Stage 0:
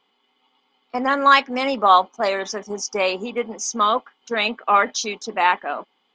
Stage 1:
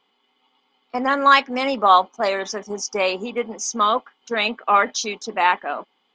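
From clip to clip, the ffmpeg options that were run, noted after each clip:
ffmpeg -i in.wav -af anull out.wav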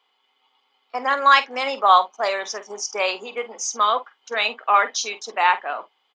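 ffmpeg -i in.wav -filter_complex "[0:a]highpass=550,asplit=2[link_01][link_02];[link_02]adelay=48,volume=-14dB[link_03];[link_01][link_03]amix=inputs=2:normalize=0" out.wav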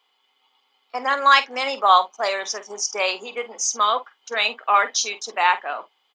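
ffmpeg -i in.wav -af "highshelf=frequency=4300:gain=7,volume=-1dB" out.wav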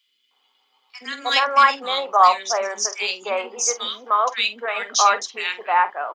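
ffmpeg -i in.wav -filter_complex "[0:a]acrossover=split=320|2000[link_01][link_02][link_03];[link_01]adelay=70[link_04];[link_02]adelay=310[link_05];[link_04][link_05][link_03]amix=inputs=3:normalize=0,volume=2dB" out.wav

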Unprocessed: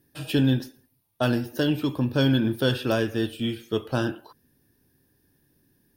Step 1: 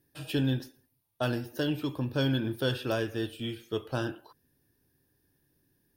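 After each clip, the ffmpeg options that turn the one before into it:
ffmpeg -i in.wav -af "equalizer=frequency=220:width_type=o:width=0.48:gain=-5,volume=-5.5dB" out.wav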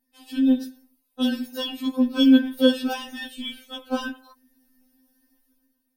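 ffmpeg -i in.wav -af "dynaudnorm=framelen=100:gausssize=11:maxgain=10dB,bass=frequency=250:gain=10,treble=frequency=4000:gain=3,afftfilt=real='re*3.46*eq(mod(b,12),0)':imag='im*3.46*eq(mod(b,12),0)':win_size=2048:overlap=0.75,volume=-3.5dB" out.wav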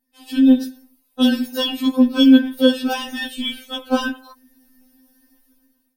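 ffmpeg -i in.wav -af "dynaudnorm=framelen=150:gausssize=3:maxgain=8dB" out.wav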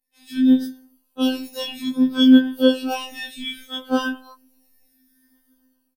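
ffmpeg -i in.wav -filter_complex "[0:a]afftfilt=real='hypot(re,im)*cos(PI*b)':imag='0':win_size=2048:overlap=0.75,asplit=2[link_01][link_02];[link_02]adelay=10.8,afreqshift=0.63[link_03];[link_01][link_03]amix=inputs=2:normalize=1" out.wav

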